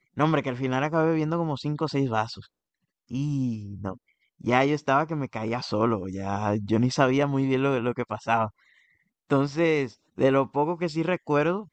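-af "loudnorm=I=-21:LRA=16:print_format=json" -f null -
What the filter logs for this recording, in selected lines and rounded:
"input_i" : "-25.8",
"input_tp" : "-6.4",
"input_lra" : "2.1",
"input_thresh" : "-36.2",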